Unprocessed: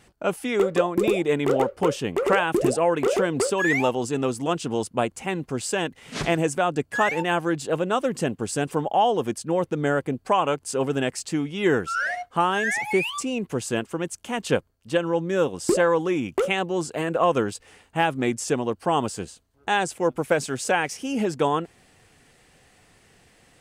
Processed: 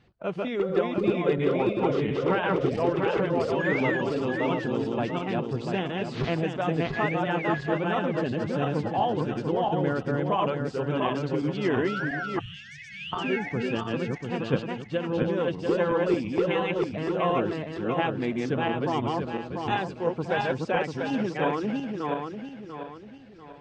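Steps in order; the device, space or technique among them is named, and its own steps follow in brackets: regenerating reverse delay 0.346 s, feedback 61%, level -1 dB; 12.39–13.13 inverse Chebyshev band-stop 350–910 Hz, stop band 70 dB; clip after many re-uploads (LPF 4500 Hz 24 dB/oct; bin magnitudes rounded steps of 15 dB); bell 130 Hz +6 dB 1.8 oct; gain -7 dB

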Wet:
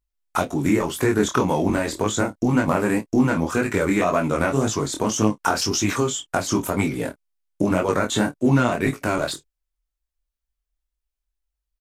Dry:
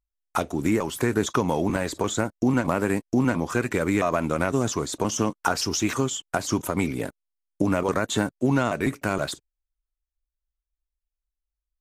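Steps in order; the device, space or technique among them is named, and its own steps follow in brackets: double-tracked vocal (doubler 28 ms -13 dB; chorus 1.9 Hz, delay 19 ms, depth 5.9 ms); gain +6 dB

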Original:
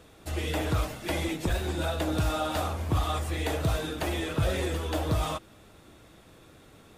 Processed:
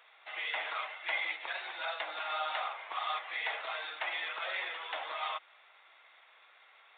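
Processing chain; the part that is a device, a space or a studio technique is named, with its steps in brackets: musical greeting card (downsampling 8000 Hz; HPF 800 Hz 24 dB/oct; bell 2100 Hz +9 dB 0.24 oct); gain -1.5 dB

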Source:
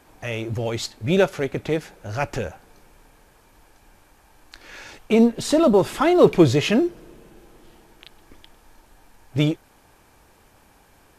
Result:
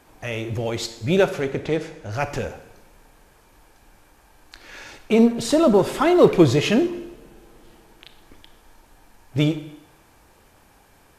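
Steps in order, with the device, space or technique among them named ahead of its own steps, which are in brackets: 1.4–2.12 LPF 8700 Hz 12 dB/oct; saturated reverb return (on a send at -10 dB: reverb RT60 0.85 s, pre-delay 27 ms + soft clip -12 dBFS, distortion -13 dB)

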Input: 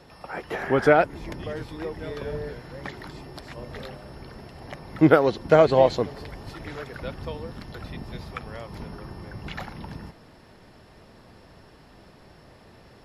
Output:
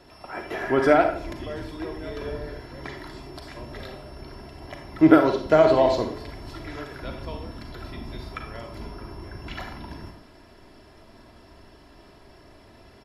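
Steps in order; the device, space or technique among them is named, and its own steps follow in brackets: microphone above a desk (comb 3 ms, depth 50%; reverb RT60 0.50 s, pre-delay 34 ms, DRR 4.5 dB); gain -2 dB

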